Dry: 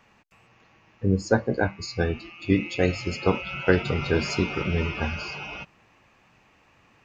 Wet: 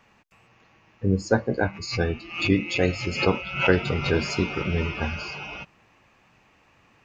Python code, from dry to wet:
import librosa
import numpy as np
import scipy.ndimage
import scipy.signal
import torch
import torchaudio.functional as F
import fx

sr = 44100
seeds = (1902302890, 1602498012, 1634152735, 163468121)

y = fx.pre_swell(x, sr, db_per_s=110.0, at=(1.71, 4.31))